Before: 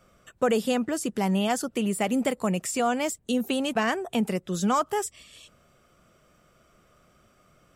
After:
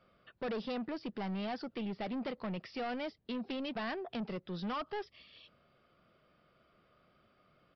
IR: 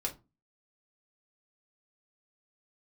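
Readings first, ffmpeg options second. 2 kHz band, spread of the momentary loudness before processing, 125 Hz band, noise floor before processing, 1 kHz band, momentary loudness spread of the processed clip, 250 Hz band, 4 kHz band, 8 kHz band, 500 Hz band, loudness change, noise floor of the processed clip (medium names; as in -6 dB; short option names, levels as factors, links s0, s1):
-12.0 dB, 4 LU, -12.5 dB, -63 dBFS, -13.5 dB, 5 LU, -12.5 dB, -11.5 dB, under -35 dB, -13.0 dB, -13.0 dB, -71 dBFS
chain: -af "lowshelf=f=64:g=-11,aresample=11025,asoftclip=type=tanh:threshold=0.0447,aresample=44100,volume=0.447"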